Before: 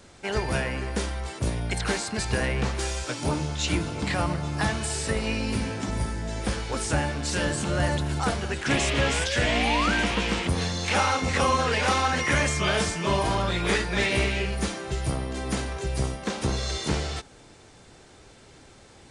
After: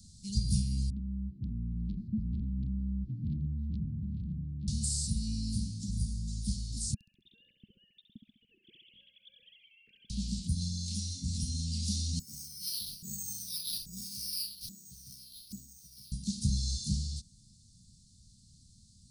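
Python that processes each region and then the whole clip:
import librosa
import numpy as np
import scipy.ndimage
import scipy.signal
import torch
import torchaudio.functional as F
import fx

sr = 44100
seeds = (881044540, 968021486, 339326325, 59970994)

y = fx.chain(x, sr, fx.lowpass(hz=1100.0, slope=24),
    fx.transformer_sat(knee_hz=1100.0), at=(0.9, 4.68))
y = fx.chain(y, sr, fx.sine_speech(),
    fx.echo_feedback(ms=67, feedback_pct=54, wet_db=-8.5), at=(6.94, 10.1))
y = fx.chain(y, sr, fx.filter_lfo_bandpass(shape='saw_up', hz=1.2, low_hz=460.0, high_hz=6100.0, q=3.1),
    fx.resample_bad(factor=6, down='none', up='hold'), at=(12.19, 16.12))
y = scipy.signal.sosfilt(scipy.signal.cheby1(4, 1.0, [210.0, 4300.0], 'bandstop', fs=sr, output='sos'), y)
y = fx.rider(y, sr, range_db=10, speed_s=2.0)
y = y * 10.0 ** (-1.5 / 20.0)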